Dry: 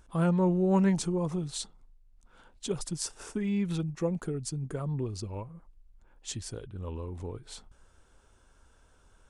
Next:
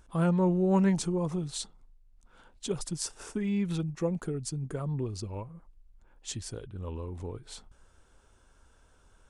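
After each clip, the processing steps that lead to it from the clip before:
no processing that can be heard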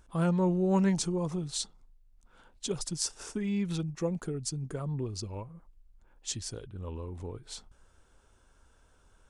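dynamic equaliser 5,500 Hz, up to +6 dB, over −55 dBFS, Q 1
level −1.5 dB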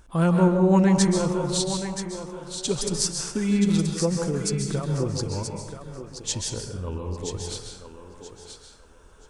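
feedback echo with a high-pass in the loop 978 ms, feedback 25%, high-pass 300 Hz, level −8 dB
dense smooth reverb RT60 0.87 s, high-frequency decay 0.55×, pre-delay 120 ms, DRR 3 dB
level +7 dB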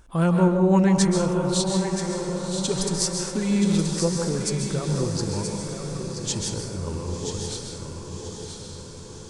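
feedback delay with all-pass diffusion 1,085 ms, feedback 57%, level −7.5 dB

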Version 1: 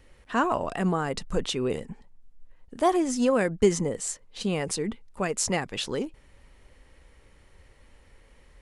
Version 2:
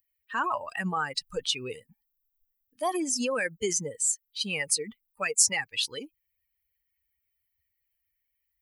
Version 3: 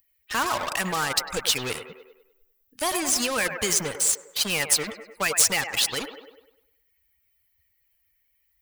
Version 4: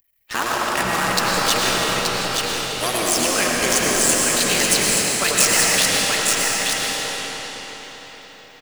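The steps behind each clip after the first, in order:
spectral dynamics exaggerated over time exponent 2; spectral tilt +4.5 dB per octave; in parallel at +2 dB: compressor whose output falls as the input rises −34 dBFS, ratio −1; on the sum: level −4 dB
leveller curve on the samples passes 2; delay with a band-pass on its return 100 ms, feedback 44%, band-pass 880 Hz, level −13 dB; every bin compressed towards the loudest bin 2 to 1
sub-harmonics by changed cycles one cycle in 3, muted; single-tap delay 877 ms −4 dB; convolution reverb RT60 5.0 s, pre-delay 65 ms, DRR −3.5 dB; level +3.5 dB

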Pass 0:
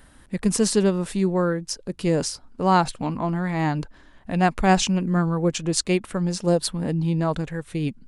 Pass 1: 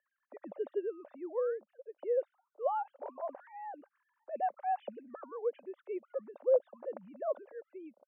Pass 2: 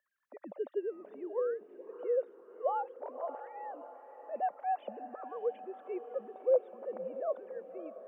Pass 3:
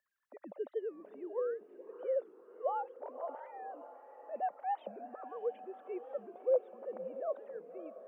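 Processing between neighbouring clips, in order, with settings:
three sine waves on the formant tracks; four-pole ladder band-pass 610 Hz, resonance 75%; level −5 dB
feedback delay with all-pass diffusion 598 ms, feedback 55%, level −12 dB
wow of a warped record 45 rpm, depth 160 cents; level −2.5 dB

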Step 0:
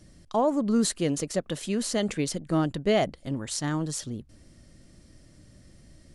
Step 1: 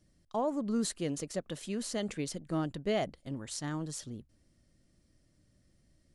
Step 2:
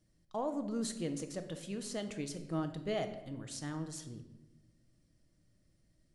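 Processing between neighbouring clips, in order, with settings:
noise gate −43 dBFS, range −7 dB; level −8 dB
rectangular room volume 450 cubic metres, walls mixed, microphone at 0.59 metres; level −5 dB

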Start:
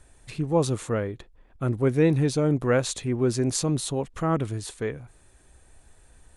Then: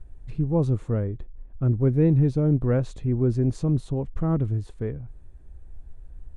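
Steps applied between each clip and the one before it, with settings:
spectral tilt −4.5 dB per octave
level −8 dB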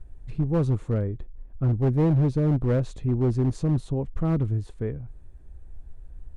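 hard clipping −17 dBFS, distortion −16 dB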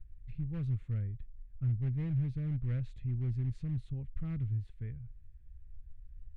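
drawn EQ curve 120 Hz 0 dB, 300 Hz −16 dB, 460 Hz −19 dB, 950 Hz −20 dB, 2,100 Hz −1 dB, 3,400 Hz −6 dB, 6,200 Hz −17 dB
level −7.5 dB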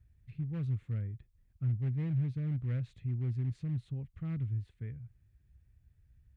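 high-pass filter 99 Hz 12 dB per octave
level +1.5 dB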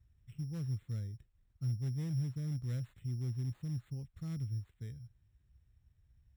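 bad sample-rate conversion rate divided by 8×, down none, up hold
level −3.5 dB

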